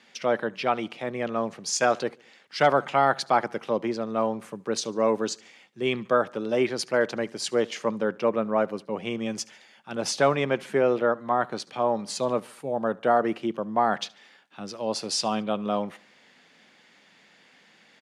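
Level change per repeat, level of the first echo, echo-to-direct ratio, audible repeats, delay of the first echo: -6.5 dB, -24.0 dB, -23.0 dB, 2, 72 ms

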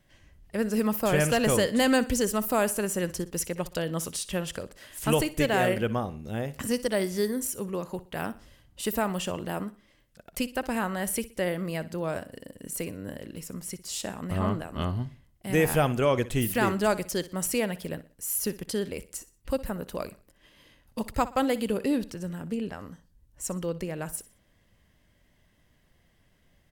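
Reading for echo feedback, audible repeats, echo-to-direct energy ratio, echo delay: 37%, 3, -16.5 dB, 61 ms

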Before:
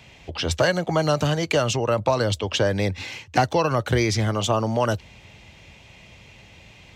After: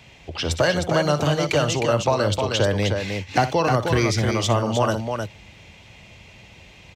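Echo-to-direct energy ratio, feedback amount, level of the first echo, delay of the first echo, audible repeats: -4.5 dB, no regular repeats, -13.0 dB, 60 ms, 2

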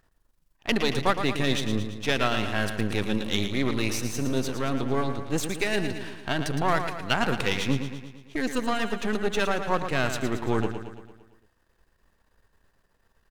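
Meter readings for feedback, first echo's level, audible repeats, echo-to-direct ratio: 56%, -8.5 dB, 6, -7.0 dB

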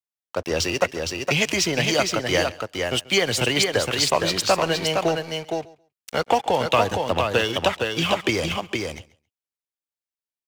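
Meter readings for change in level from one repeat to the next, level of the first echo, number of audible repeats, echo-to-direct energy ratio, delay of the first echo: no regular repeats, -21.0 dB, 3, -4.5 dB, 136 ms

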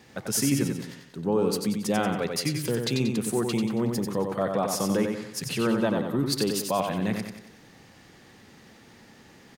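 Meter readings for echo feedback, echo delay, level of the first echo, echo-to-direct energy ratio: 45%, 92 ms, -5.0 dB, -4.0 dB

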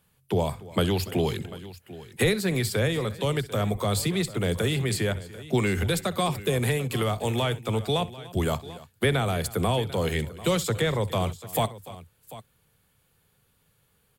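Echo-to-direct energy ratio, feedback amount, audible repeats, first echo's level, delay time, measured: -13.5 dB, no regular repeats, 3, -19.5 dB, 64 ms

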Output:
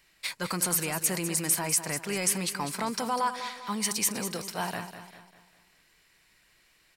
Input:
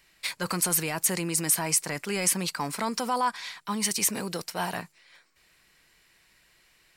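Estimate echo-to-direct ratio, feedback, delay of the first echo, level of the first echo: -9.5 dB, 44%, 199 ms, -10.5 dB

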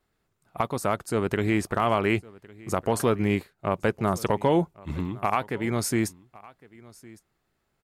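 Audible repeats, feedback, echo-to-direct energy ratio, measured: 1, no regular repeats, -22.5 dB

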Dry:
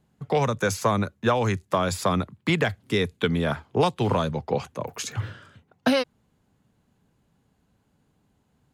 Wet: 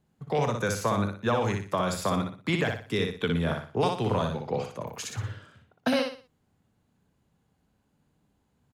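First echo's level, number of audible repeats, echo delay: -4.5 dB, 4, 60 ms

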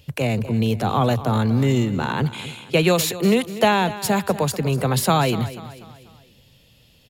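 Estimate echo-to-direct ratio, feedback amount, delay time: -14.0 dB, 45%, 244 ms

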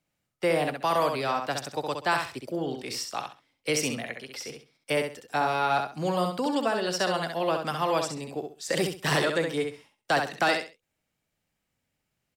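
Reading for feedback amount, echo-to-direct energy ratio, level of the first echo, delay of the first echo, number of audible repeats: 24%, -5.0 dB, -5.5 dB, 66 ms, 3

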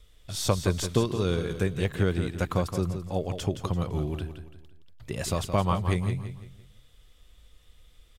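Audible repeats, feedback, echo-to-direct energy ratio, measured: 4, 37%, -8.5 dB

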